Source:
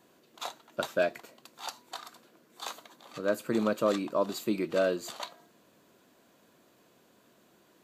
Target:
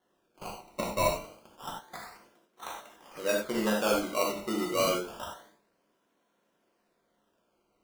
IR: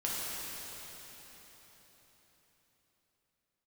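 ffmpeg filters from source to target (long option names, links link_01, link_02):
-filter_complex "[0:a]agate=range=-10dB:threshold=-59dB:ratio=16:detection=peak,bass=frequency=250:gain=-9,treble=frequency=4000:gain=-14,bandreject=frequency=49.09:width_type=h:width=4,bandreject=frequency=98.18:width_type=h:width=4,bandreject=frequency=147.27:width_type=h:width=4,bandreject=frequency=196.36:width_type=h:width=4,bandreject=frequency=245.45:width_type=h:width=4,bandreject=frequency=294.54:width_type=h:width=4,bandreject=frequency=343.63:width_type=h:width=4,bandreject=frequency=392.72:width_type=h:width=4,bandreject=frequency=441.81:width_type=h:width=4,bandreject=frequency=490.9:width_type=h:width=4,bandreject=frequency=539.99:width_type=h:width=4,bandreject=frequency=589.08:width_type=h:width=4,bandreject=frequency=638.17:width_type=h:width=4,bandreject=frequency=687.26:width_type=h:width=4,bandreject=frequency=736.35:width_type=h:width=4,bandreject=frequency=785.44:width_type=h:width=4,bandreject=frequency=834.53:width_type=h:width=4,bandreject=frequency=883.62:width_type=h:width=4,bandreject=frequency=932.71:width_type=h:width=4,bandreject=frequency=981.8:width_type=h:width=4,bandreject=frequency=1030.89:width_type=h:width=4,bandreject=frequency=1079.98:width_type=h:width=4,bandreject=frequency=1129.07:width_type=h:width=4,bandreject=frequency=1178.16:width_type=h:width=4,bandreject=frequency=1227.25:width_type=h:width=4,bandreject=frequency=1276.34:width_type=h:width=4,bandreject=frequency=1325.43:width_type=h:width=4,bandreject=frequency=1374.52:width_type=h:width=4,bandreject=frequency=1423.61:width_type=h:width=4,bandreject=frequency=1472.7:width_type=h:width=4,bandreject=frequency=1521.79:width_type=h:width=4,bandreject=frequency=1570.88:width_type=h:width=4,bandreject=frequency=1619.97:width_type=h:width=4,bandreject=frequency=1669.06:width_type=h:width=4,bandreject=frequency=1718.15:width_type=h:width=4,bandreject=frequency=1767.24:width_type=h:width=4,acrusher=samples=18:mix=1:aa=0.000001:lfo=1:lforange=18:lforate=0.28[link_01];[1:a]atrim=start_sample=2205,atrim=end_sample=4410[link_02];[link_01][link_02]afir=irnorm=-1:irlink=0"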